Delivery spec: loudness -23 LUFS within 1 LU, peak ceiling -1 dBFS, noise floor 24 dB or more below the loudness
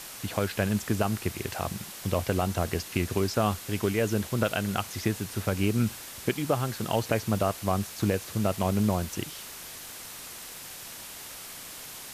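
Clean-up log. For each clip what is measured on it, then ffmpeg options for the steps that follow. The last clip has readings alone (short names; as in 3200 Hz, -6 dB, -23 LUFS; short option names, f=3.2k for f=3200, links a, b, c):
noise floor -43 dBFS; noise floor target -54 dBFS; loudness -30.0 LUFS; peak -12.0 dBFS; loudness target -23.0 LUFS
-> -af "afftdn=nr=11:nf=-43"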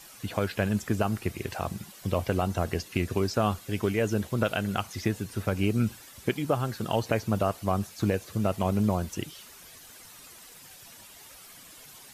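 noise floor -50 dBFS; noise floor target -54 dBFS
-> -af "afftdn=nr=6:nf=-50"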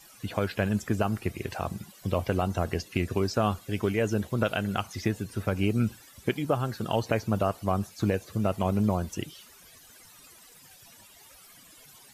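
noise floor -54 dBFS; loudness -29.5 LUFS; peak -12.0 dBFS; loudness target -23.0 LUFS
-> -af "volume=6.5dB"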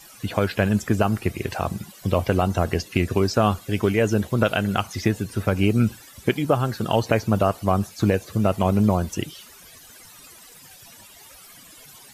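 loudness -23.0 LUFS; peak -5.5 dBFS; noise floor -47 dBFS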